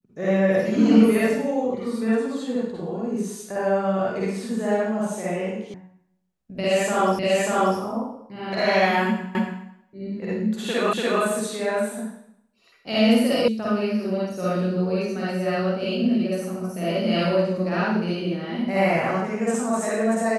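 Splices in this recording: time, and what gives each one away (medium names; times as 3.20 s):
5.74 s: sound stops dead
7.19 s: repeat of the last 0.59 s
9.35 s: repeat of the last 0.28 s
10.93 s: repeat of the last 0.29 s
13.48 s: sound stops dead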